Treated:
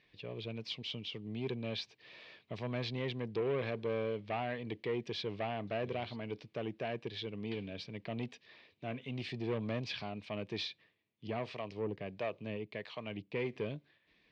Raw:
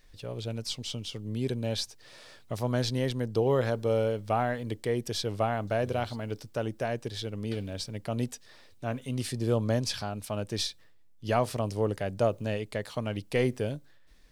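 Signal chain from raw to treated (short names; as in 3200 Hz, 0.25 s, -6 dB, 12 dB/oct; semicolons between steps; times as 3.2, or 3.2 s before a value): 11.27–13.56 harmonic tremolo 1.5 Hz, depth 70%, crossover 510 Hz; soft clip -25 dBFS, distortion -12 dB; speaker cabinet 170–3700 Hz, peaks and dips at 260 Hz -5 dB, 550 Hz -6 dB, 830 Hz -6 dB, 1400 Hz -10 dB, 2400 Hz +6 dB; gain -1 dB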